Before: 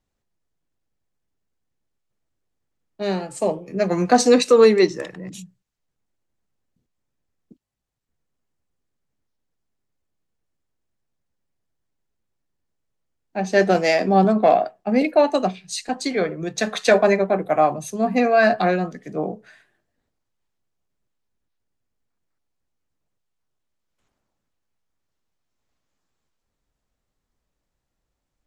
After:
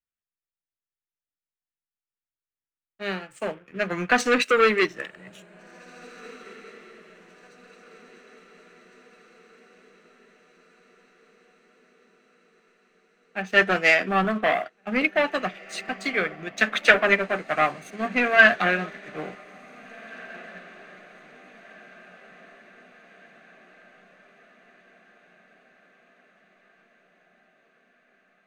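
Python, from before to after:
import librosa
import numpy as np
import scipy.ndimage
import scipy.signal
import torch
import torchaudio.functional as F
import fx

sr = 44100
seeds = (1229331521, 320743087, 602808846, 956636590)

p1 = fx.leveller(x, sr, passes=2)
p2 = fx.band_shelf(p1, sr, hz=2000.0, db=13.0, octaves=1.7)
p3 = p2 + fx.echo_diffused(p2, sr, ms=1908, feedback_pct=57, wet_db=-14.5, dry=0)
p4 = fx.upward_expand(p3, sr, threshold_db=-24.0, expansion=1.5)
y = p4 * 10.0 ** (-9.5 / 20.0)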